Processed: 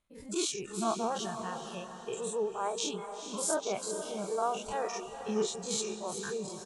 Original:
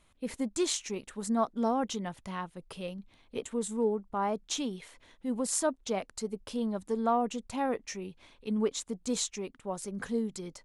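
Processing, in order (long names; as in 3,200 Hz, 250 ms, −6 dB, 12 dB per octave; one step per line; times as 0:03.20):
every bin's largest magnitude spread in time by 120 ms
noise reduction from a noise print of the clip's start 15 dB
tempo change 1.6×
feedback delay with all-pass diffusion 459 ms, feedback 43%, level −8.5 dB
level −5 dB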